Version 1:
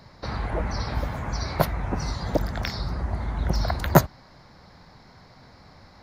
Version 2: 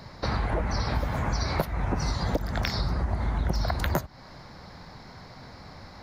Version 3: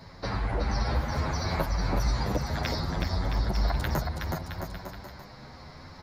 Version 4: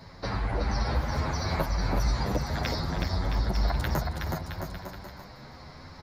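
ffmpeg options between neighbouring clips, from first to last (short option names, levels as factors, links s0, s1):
-af "alimiter=limit=0.299:level=0:latency=1:release=321,acompressor=threshold=0.0398:ratio=6,volume=1.78"
-filter_complex "[0:a]asplit=2[s0][s1];[s1]aecho=0:1:370|666|902.8|1092|1244:0.631|0.398|0.251|0.158|0.1[s2];[s0][s2]amix=inputs=2:normalize=0,asplit=2[s3][s4];[s4]adelay=8.9,afreqshift=0.67[s5];[s3][s5]amix=inputs=2:normalize=1"
-af "aecho=1:1:315:0.178"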